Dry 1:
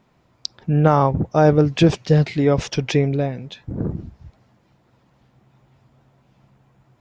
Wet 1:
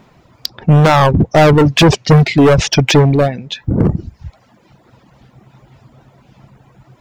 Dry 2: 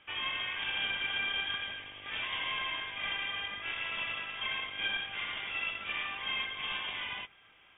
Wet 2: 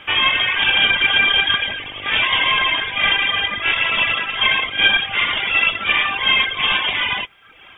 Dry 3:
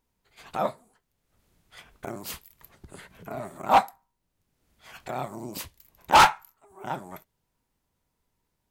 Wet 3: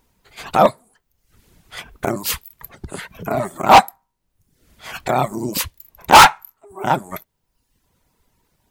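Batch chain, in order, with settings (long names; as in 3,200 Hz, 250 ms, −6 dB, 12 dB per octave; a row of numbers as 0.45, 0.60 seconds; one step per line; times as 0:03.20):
hard clipping −18.5 dBFS
reverb reduction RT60 0.84 s
normalise the peak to −2 dBFS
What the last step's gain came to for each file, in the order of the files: +14.0, +20.5, +15.0 decibels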